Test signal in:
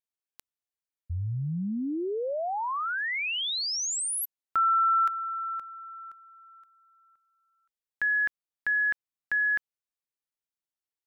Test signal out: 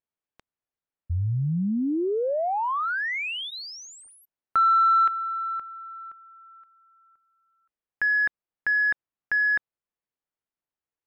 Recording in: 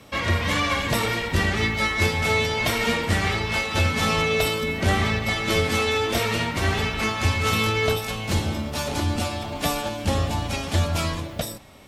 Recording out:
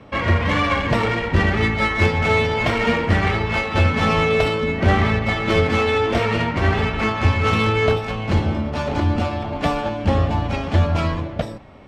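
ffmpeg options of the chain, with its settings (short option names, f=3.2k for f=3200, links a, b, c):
-af "adynamicsmooth=sensitivity=0.5:basefreq=2.3k,bandreject=f=3.7k:w=22,volume=5.5dB"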